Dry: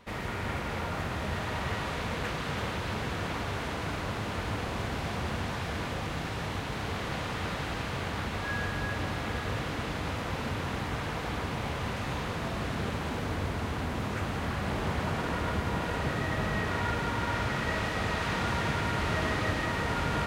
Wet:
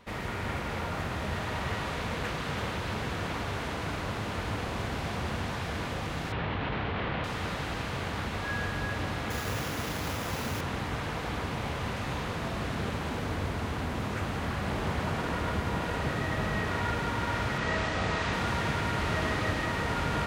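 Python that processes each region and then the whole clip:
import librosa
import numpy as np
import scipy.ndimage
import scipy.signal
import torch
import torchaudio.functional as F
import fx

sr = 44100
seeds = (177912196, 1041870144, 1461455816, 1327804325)

y = fx.chain(x, sr, fx.lowpass(hz=3400.0, slope=24),
    fx.env_flatten(amount_pct=100), at=(6.32, 7.24))
y = fx.chain(y, sr, fx.highpass(hz=49.0, slope=12),
    fx.high_shelf(hz=3900.0, db=6.5),
    fx.sample_hold(seeds[0], rate_hz=8500.0, jitter_pct=0), at=(9.3, 10.61))
y = fx.chain(y, sr, fx.lowpass(hz=8300.0, slope=24),
    fx.room_flutter(wall_m=5.6, rt60_s=0.26), at=(17.58, 18.33))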